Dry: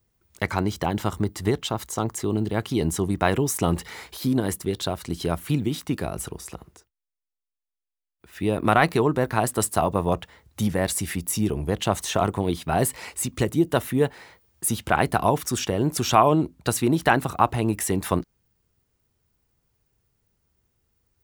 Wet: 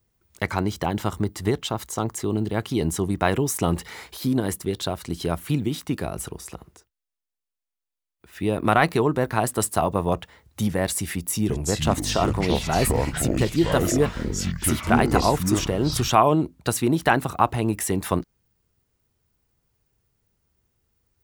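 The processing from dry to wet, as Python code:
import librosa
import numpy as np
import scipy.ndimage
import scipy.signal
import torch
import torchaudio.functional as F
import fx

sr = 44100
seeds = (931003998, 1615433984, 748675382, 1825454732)

y = fx.echo_pitch(x, sr, ms=331, semitones=-6, count=3, db_per_echo=-3.0, at=(11.16, 16.13))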